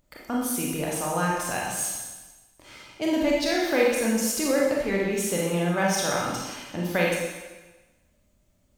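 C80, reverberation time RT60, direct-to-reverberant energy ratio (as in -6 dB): 2.5 dB, 1.2 s, -3.5 dB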